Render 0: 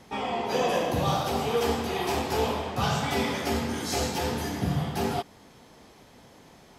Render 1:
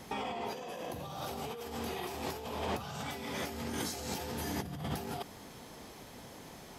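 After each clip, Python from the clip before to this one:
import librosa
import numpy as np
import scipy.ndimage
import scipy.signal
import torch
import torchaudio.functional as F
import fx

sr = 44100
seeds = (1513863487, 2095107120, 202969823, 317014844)

y = fx.high_shelf(x, sr, hz=11000.0, db=11.0)
y = fx.over_compress(y, sr, threshold_db=-35.0, ratio=-1.0)
y = F.gain(torch.from_numpy(y), -4.5).numpy()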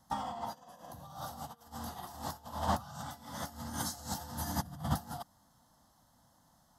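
y = fx.fixed_phaser(x, sr, hz=1000.0, stages=4)
y = fx.upward_expand(y, sr, threshold_db=-51.0, expansion=2.5)
y = F.gain(torch.from_numpy(y), 9.5).numpy()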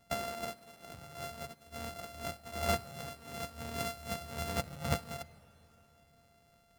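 y = np.r_[np.sort(x[:len(x) // 64 * 64].reshape(-1, 64), axis=1).ravel(), x[len(x) // 64 * 64:]]
y = fx.rev_freeverb(y, sr, rt60_s=3.8, hf_ratio=0.85, predelay_ms=0, drr_db=18.5)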